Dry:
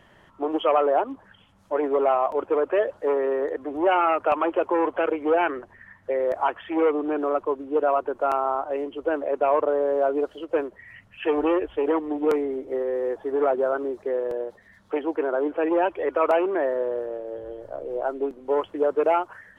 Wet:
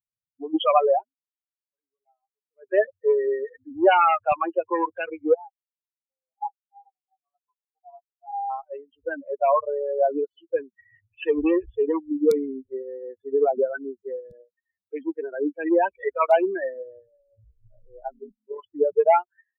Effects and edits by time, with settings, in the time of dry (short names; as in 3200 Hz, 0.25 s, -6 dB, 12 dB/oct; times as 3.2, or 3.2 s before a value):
0.94–2.69 dip -17 dB, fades 0.15 s
5.34–8.5 band-pass 800 Hz, Q 8.7
18.13–18.73 AM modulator 39 Hz, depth 80%
whole clip: per-bin expansion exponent 3; spectral noise reduction 20 dB; gain +8 dB